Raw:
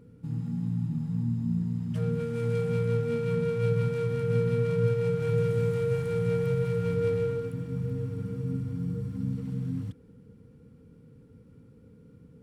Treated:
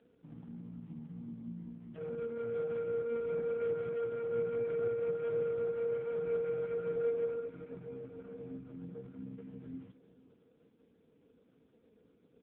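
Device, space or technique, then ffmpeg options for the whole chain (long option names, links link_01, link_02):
satellite phone: -af "highpass=330,lowpass=3100,aecho=1:1:493:0.126,volume=-3.5dB" -ar 8000 -c:a libopencore_amrnb -b:a 4750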